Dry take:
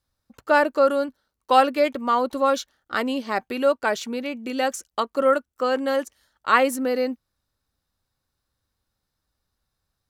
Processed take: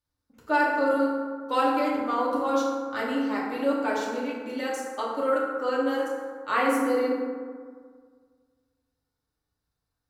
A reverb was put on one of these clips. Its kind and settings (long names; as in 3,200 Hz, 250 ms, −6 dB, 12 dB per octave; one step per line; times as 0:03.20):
feedback delay network reverb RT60 1.8 s, low-frequency decay 1.05×, high-frequency decay 0.4×, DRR −6.5 dB
level −11.5 dB